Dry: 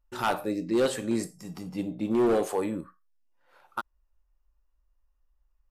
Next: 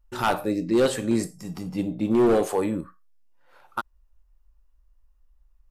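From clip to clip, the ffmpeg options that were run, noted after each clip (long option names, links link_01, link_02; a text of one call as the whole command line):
ffmpeg -i in.wav -af "lowshelf=frequency=120:gain=7,volume=3.5dB" out.wav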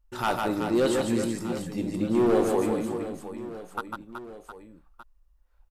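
ffmpeg -i in.wav -af "aecho=1:1:150|375|712.5|1219|1978:0.631|0.398|0.251|0.158|0.1,volume=-3.5dB" out.wav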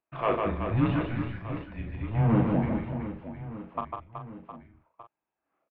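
ffmpeg -i in.wav -filter_complex "[0:a]asplit=2[link_01][link_02];[link_02]adelay=39,volume=-6dB[link_03];[link_01][link_03]amix=inputs=2:normalize=0,highpass=frequency=350:width_type=q:width=0.5412,highpass=frequency=350:width_type=q:width=1.307,lowpass=frequency=2900:width_type=q:width=0.5176,lowpass=frequency=2900:width_type=q:width=0.7071,lowpass=frequency=2900:width_type=q:width=1.932,afreqshift=-230" out.wav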